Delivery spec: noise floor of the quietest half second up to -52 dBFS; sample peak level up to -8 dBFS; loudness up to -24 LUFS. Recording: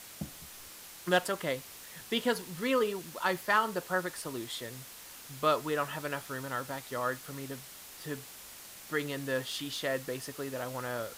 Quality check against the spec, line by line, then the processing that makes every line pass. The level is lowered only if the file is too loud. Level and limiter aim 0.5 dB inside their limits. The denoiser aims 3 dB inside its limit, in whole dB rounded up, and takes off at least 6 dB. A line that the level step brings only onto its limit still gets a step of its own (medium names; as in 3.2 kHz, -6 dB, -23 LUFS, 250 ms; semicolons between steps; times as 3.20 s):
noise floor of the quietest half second -49 dBFS: fail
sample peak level -14.5 dBFS: pass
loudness -34.0 LUFS: pass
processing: noise reduction 6 dB, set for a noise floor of -49 dBFS